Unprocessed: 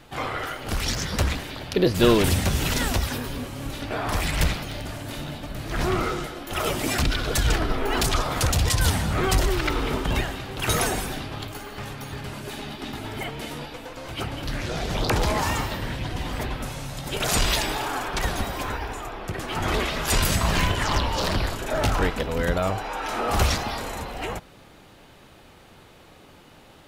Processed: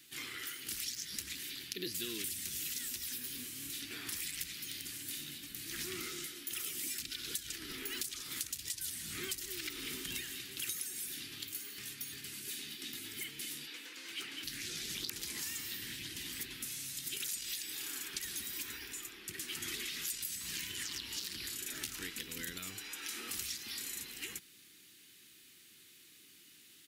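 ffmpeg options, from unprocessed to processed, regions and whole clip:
ffmpeg -i in.wav -filter_complex "[0:a]asettb=1/sr,asplit=3[link_01][link_02][link_03];[link_01]atrim=end=13.674[link_04];[link_02]atrim=start=13.67:end=14.44,asetpts=PTS-STARTPTS,afade=type=in:duration=0.004:curve=qsin,afade=type=out:start_time=0.766:duration=0.004:curve=qsin,highpass=200,asplit=2[link_05][link_06];[link_06]highpass=frequency=720:poles=1,volume=14dB,asoftclip=type=tanh:threshold=-18dB[link_07];[link_05][link_07]amix=inputs=2:normalize=0,lowpass=frequency=1800:poles=1,volume=-6dB[link_08];[link_03]atrim=start=14.436[link_09];[link_04][link_08]acrossfade=duration=0.004:curve1=hsin:curve2=qsin[link_10];[link_10][link_09]acrossfade=duration=0.004:curve1=qsin:curve2=hsin,aderivative,acompressor=threshold=-38dB:ratio=12,firequalizer=gain_entry='entry(340,0);entry(600,-30);entry(1800,-10)':delay=0.05:min_phase=1,volume=11.5dB" out.wav

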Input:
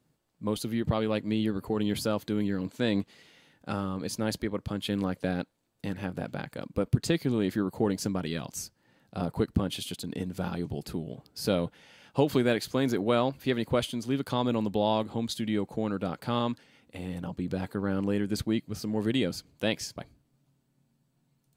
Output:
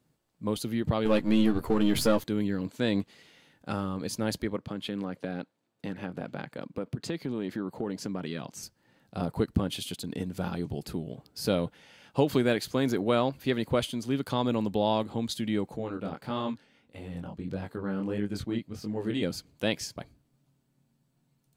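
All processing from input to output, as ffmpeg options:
ffmpeg -i in.wav -filter_complex "[0:a]asettb=1/sr,asplit=3[link_01][link_02][link_03];[link_01]atrim=end=1.054[link_04];[link_02]atrim=start=1.05:end=2.24,asetpts=PTS-STARTPTS,afade=type=in:duration=0.004:curve=qsin,afade=type=out:start_time=1.186:duration=0.004:curve=qsin,aeval=exprs='if(lt(val(0),0),0.447*val(0),val(0))':channel_layout=same,acontrast=79,asplit=2[link_05][link_06];[link_06]adelay=13,volume=-7.5dB[link_07];[link_05][link_07]amix=inputs=2:normalize=0,atrim=end_sample=52479[link_08];[link_03]atrim=start=2.236[link_09];[link_04][link_08]acrossfade=duration=0.004:curve1=hsin:curve2=qsin[link_10];[link_10][link_09]acrossfade=duration=0.004:curve1=qsin:curve2=hsin,asettb=1/sr,asplit=3[link_11][link_12][link_13];[link_11]atrim=end=4.564[link_14];[link_12]atrim=start=4.56:end=8.63,asetpts=PTS-STARTPTS,afade=type=in:duration=0.004:curve=qsin,afade=type=out:start_time=4.066:duration=0.004:curve=qsin,highpass=140,highshelf=frequency=6000:gain=-11.5,acompressor=threshold=-29dB:ratio=3:attack=3.2:release=140:knee=1:detection=peak[link_15];[link_13]atrim=start=8.626[link_16];[link_14][link_15]acrossfade=duration=0.004:curve1=hsin:curve2=qsin[link_17];[link_17][link_16]acrossfade=duration=0.004:curve1=qsin:curve2=hsin,asettb=1/sr,asplit=3[link_18][link_19][link_20];[link_18]atrim=end=15.774[link_21];[link_19]atrim=start=15.77:end=19.23,asetpts=PTS-STARTPTS,afade=type=in:duration=0.004:curve=qsin,afade=type=out:start_time=3.456:duration=0.004:curve=qsin,highshelf=frequency=5500:gain=-6.5,flanger=delay=19.5:depth=6:speed=1.6[link_22];[link_20]atrim=start=19.226[link_23];[link_21][link_22]acrossfade=duration=0.004:curve1=hsin:curve2=qsin[link_24];[link_24][link_23]acrossfade=duration=0.004:curve1=qsin:curve2=hsin" out.wav

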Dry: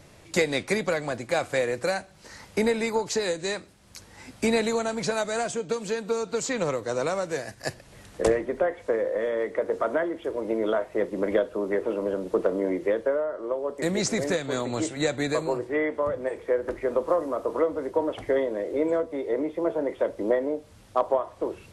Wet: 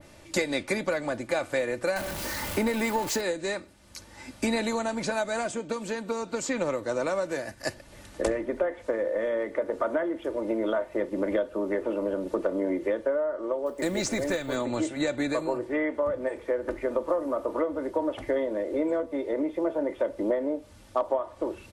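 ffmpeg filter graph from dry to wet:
ffmpeg -i in.wav -filter_complex "[0:a]asettb=1/sr,asplit=3[link_01][link_02][link_03];[link_01]atrim=end=1.964[link_04];[link_02]atrim=start=1.96:end=3.21,asetpts=PTS-STARTPTS,afade=type=in:duration=0.004:curve=qsin,afade=type=out:start_time=1.246:duration=0.004:curve=qsin,aeval=exprs='val(0)+0.5*0.0355*sgn(val(0))':channel_layout=same,highshelf=frequency=8100:gain=4[link_05];[link_03]atrim=start=3.206[link_06];[link_04][link_05]acrossfade=duration=0.004:curve1=hsin:curve2=qsin[link_07];[link_07][link_06]acrossfade=duration=0.004:curve1=qsin:curve2=hsin,asettb=1/sr,asplit=3[link_08][link_09][link_10];[link_08]atrim=end=13.664[link_11];[link_09]atrim=start=13.66:end=14.56,asetpts=PTS-STARTPTS,afade=type=in:duration=0.004:curve=qsin,afade=type=out:start_time=0.896:duration=0.004:curve=qsin,asubboost=boost=10:cutoff=98,acrusher=bits=7:mode=log:mix=0:aa=0.000001[link_12];[link_10]atrim=start=14.556[link_13];[link_11][link_12]acrossfade=duration=0.004:curve1=hsin:curve2=qsin[link_14];[link_14][link_13]acrossfade=duration=0.004:curve1=qsin:curve2=hsin,adynamicequalizer=threshold=0.00355:dfrequency=6100:dqfactor=0.74:tfrequency=6100:tqfactor=0.74:attack=5:release=100:ratio=0.375:range=2.5:mode=cutabove:tftype=bell,aecho=1:1:3.4:0.44,acompressor=threshold=-25dB:ratio=2" out.wav

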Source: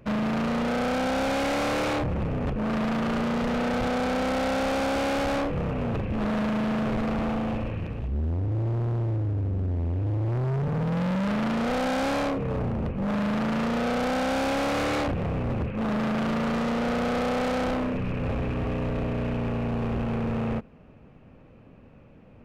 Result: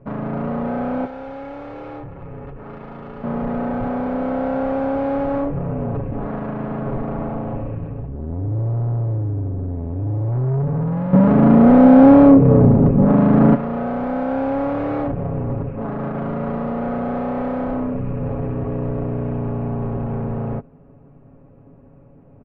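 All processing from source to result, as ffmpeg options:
ffmpeg -i in.wav -filter_complex "[0:a]asettb=1/sr,asplit=3[link_01][link_02][link_03];[link_01]atrim=end=1.054[link_04];[link_02]atrim=start=1.05:end=3.24,asetpts=PTS-STARTPTS,afade=type=in:duration=0.004:curve=qsin,afade=type=out:start_time=2.186:duration=0.004:curve=qsin,aecho=1:1:2.3:0.31,atrim=end_sample=96579,acrossover=split=1200|2700[link_05][link_06][link_07];[link_05]acompressor=threshold=-39dB:ratio=4[link_08];[link_06]acompressor=threshold=-43dB:ratio=4[link_09];[link_07]acompressor=threshold=-40dB:ratio=4[link_10];[link_08][link_09][link_10]amix=inputs=3:normalize=0[link_11];[link_03]atrim=start=3.236[link_12];[link_04][link_11]acrossfade=duration=0.004:curve1=hsin:curve2=qsin[link_13];[link_13][link_12]acrossfade=duration=0.004:curve1=qsin:curve2=hsin,asettb=1/sr,asplit=3[link_14][link_15][link_16];[link_14]atrim=end=11.134[link_17];[link_15]atrim=start=11.13:end=13.55,asetpts=PTS-STARTPTS,afade=type=in:duration=0.004:curve=qsin,afade=type=out:start_time=2.416:duration=0.004:curve=qsin,acontrast=75,equalizer=frequency=240:width_type=o:width=1.8:gain=9[link_18];[link_16]atrim=start=13.546[link_19];[link_17][link_18]acrossfade=duration=0.004:curve1=hsin:curve2=qsin[link_20];[link_20][link_19]acrossfade=duration=0.004:curve1=qsin:curve2=hsin,lowpass=1000,aecho=1:1:7.2:0.62,volume=3dB" out.wav

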